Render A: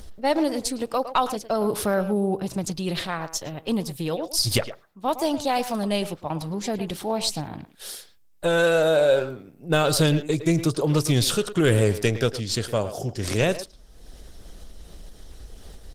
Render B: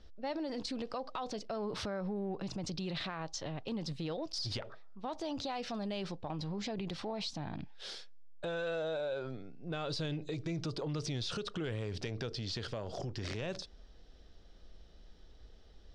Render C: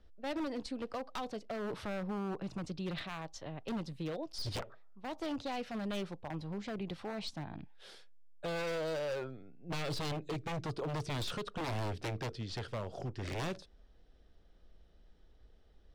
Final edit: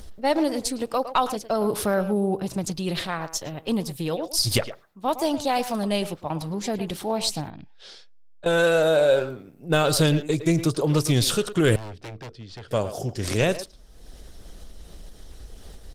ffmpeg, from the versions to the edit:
-filter_complex "[0:a]asplit=3[a][b][c];[a]atrim=end=7.502[d];[1:a]atrim=start=7.498:end=8.462[e];[b]atrim=start=8.458:end=11.762[f];[2:a]atrim=start=11.758:end=12.712[g];[c]atrim=start=12.708[h];[d][e]acrossfade=d=0.004:c1=hsin:c2=hsin[i];[i][f]acrossfade=d=0.004:c1=hsin:c2=hsin[j];[j][g]acrossfade=d=0.004:c1=hsin:c2=hsin[k];[k][h]acrossfade=d=0.004:c1=hsin:c2=hsin"

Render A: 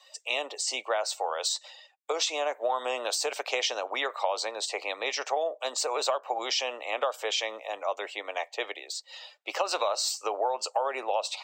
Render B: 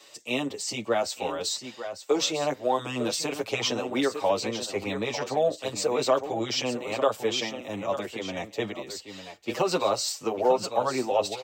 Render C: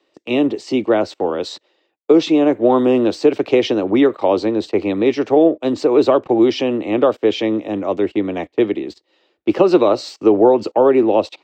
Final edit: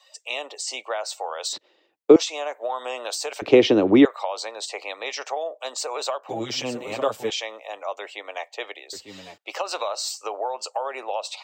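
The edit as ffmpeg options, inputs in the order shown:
-filter_complex "[2:a]asplit=2[a][b];[1:a]asplit=2[c][d];[0:a]asplit=5[e][f][g][h][i];[e]atrim=end=1.532[j];[a]atrim=start=1.528:end=2.162[k];[f]atrim=start=2.158:end=3.422[l];[b]atrim=start=3.418:end=4.052[m];[g]atrim=start=4.048:end=6.292[n];[c]atrim=start=6.288:end=7.302[o];[h]atrim=start=7.298:end=8.932[p];[d]atrim=start=8.928:end=9.382[q];[i]atrim=start=9.378[r];[j][k]acrossfade=d=0.004:c1=hsin:c2=hsin[s];[s][l]acrossfade=d=0.004:c1=hsin:c2=hsin[t];[t][m]acrossfade=d=0.004:c1=hsin:c2=hsin[u];[u][n]acrossfade=d=0.004:c1=hsin:c2=hsin[v];[v][o]acrossfade=d=0.004:c1=hsin:c2=hsin[w];[w][p]acrossfade=d=0.004:c1=hsin:c2=hsin[x];[x][q]acrossfade=d=0.004:c1=hsin:c2=hsin[y];[y][r]acrossfade=d=0.004:c1=hsin:c2=hsin"

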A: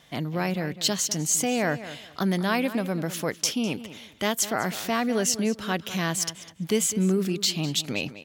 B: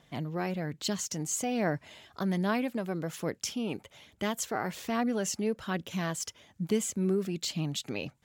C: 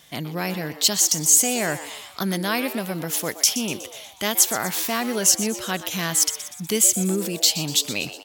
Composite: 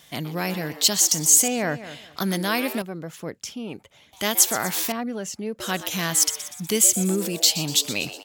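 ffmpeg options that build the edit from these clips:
-filter_complex "[1:a]asplit=2[a][b];[2:a]asplit=4[c][d][e][f];[c]atrim=end=1.482[g];[0:a]atrim=start=1.478:end=2.172[h];[d]atrim=start=2.168:end=2.822[i];[a]atrim=start=2.818:end=4.132[j];[e]atrim=start=4.128:end=4.922[k];[b]atrim=start=4.918:end=5.602[l];[f]atrim=start=5.598[m];[g][h]acrossfade=d=0.004:c1=hsin:c2=hsin[n];[n][i]acrossfade=d=0.004:c1=hsin:c2=hsin[o];[o][j]acrossfade=d=0.004:c1=hsin:c2=hsin[p];[p][k]acrossfade=d=0.004:c1=hsin:c2=hsin[q];[q][l]acrossfade=d=0.004:c1=hsin:c2=hsin[r];[r][m]acrossfade=d=0.004:c1=hsin:c2=hsin"

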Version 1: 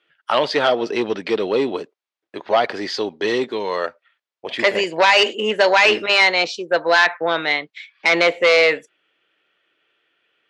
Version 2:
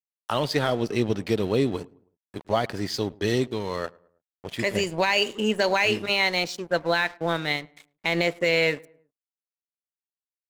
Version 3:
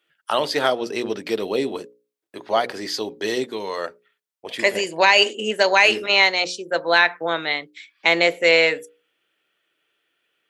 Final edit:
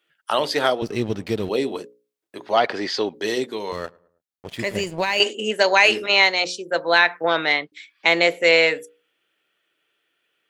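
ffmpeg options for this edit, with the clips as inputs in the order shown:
-filter_complex "[1:a]asplit=2[a][b];[0:a]asplit=2[c][d];[2:a]asplit=5[e][f][g][h][i];[e]atrim=end=0.822[j];[a]atrim=start=0.818:end=1.492[k];[f]atrim=start=1.488:end=2.572[l];[c]atrim=start=2.568:end=3.142[m];[g]atrim=start=3.138:end=3.722[n];[b]atrim=start=3.718:end=5.202[o];[h]atrim=start=5.198:end=7.242[p];[d]atrim=start=7.238:end=7.722[q];[i]atrim=start=7.718[r];[j][k]acrossfade=d=0.004:c1=hsin:c2=hsin[s];[s][l]acrossfade=d=0.004:c1=hsin:c2=hsin[t];[t][m]acrossfade=d=0.004:c1=hsin:c2=hsin[u];[u][n]acrossfade=d=0.004:c1=hsin:c2=hsin[v];[v][o]acrossfade=d=0.004:c1=hsin:c2=hsin[w];[w][p]acrossfade=d=0.004:c1=hsin:c2=hsin[x];[x][q]acrossfade=d=0.004:c1=hsin:c2=hsin[y];[y][r]acrossfade=d=0.004:c1=hsin:c2=hsin"

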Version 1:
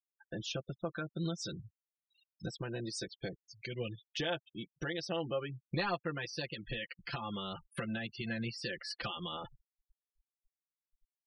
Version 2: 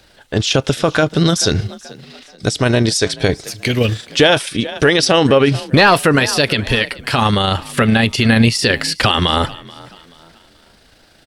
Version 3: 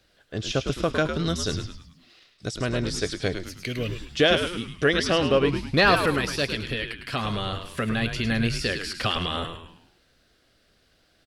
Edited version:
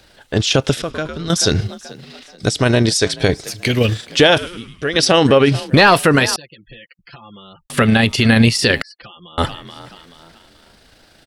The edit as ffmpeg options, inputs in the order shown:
-filter_complex "[2:a]asplit=2[a][b];[0:a]asplit=2[c][d];[1:a]asplit=5[e][f][g][h][i];[e]atrim=end=0.822[j];[a]atrim=start=0.818:end=1.302[k];[f]atrim=start=1.298:end=4.382[l];[b]atrim=start=4.378:end=4.962[m];[g]atrim=start=4.958:end=6.362[n];[c]atrim=start=6.358:end=7.702[o];[h]atrim=start=7.698:end=8.822[p];[d]atrim=start=8.818:end=9.382[q];[i]atrim=start=9.378[r];[j][k]acrossfade=d=0.004:c1=hsin:c2=hsin[s];[s][l]acrossfade=d=0.004:c1=hsin:c2=hsin[t];[t][m]acrossfade=d=0.004:c1=hsin:c2=hsin[u];[u][n]acrossfade=d=0.004:c1=hsin:c2=hsin[v];[v][o]acrossfade=d=0.004:c1=hsin:c2=hsin[w];[w][p]acrossfade=d=0.004:c1=hsin:c2=hsin[x];[x][q]acrossfade=d=0.004:c1=hsin:c2=hsin[y];[y][r]acrossfade=d=0.004:c1=hsin:c2=hsin"

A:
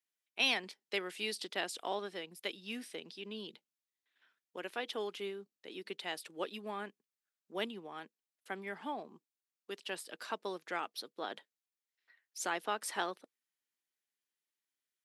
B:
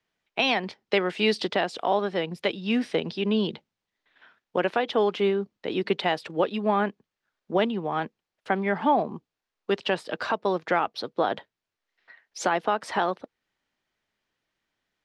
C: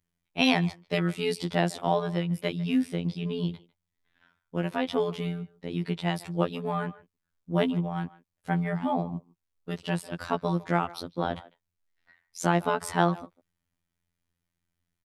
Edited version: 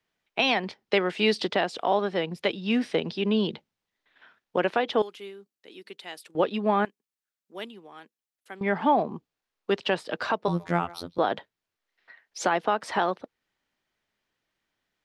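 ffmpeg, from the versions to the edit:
-filter_complex "[0:a]asplit=2[a][b];[1:a]asplit=4[c][d][e][f];[c]atrim=end=5.022[g];[a]atrim=start=5.018:end=6.352[h];[d]atrim=start=6.348:end=6.852[i];[b]atrim=start=6.848:end=8.612[j];[e]atrim=start=8.608:end=10.482[k];[2:a]atrim=start=10.478:end=11.182[l];[f]atrim=start=11.178[m];[g][h]acrossfade=d=0.004:c1=hsin:c2=hsin[n];[n][i]acrossfade=d=0.004:c1=hsin:c2=hsin[o];[o][j]acrossfade=d=0.004:c1=hsin:c2=hsin[p];[p][k]acrossfade=d=0.004:c1=hsin:c2=hsin[q];[q][l]acrossfade=d=0.004:c1=hsin:c2=hsin[r];[r][m]acrossfade=d=0.004:c1=hsin:c2=hsin"

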